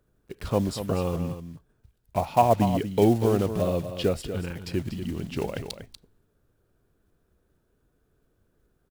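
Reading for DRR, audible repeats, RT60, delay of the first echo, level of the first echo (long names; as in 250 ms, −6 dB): no reverb audible, 1, no reverb audible, 240 ms, −10.0 dB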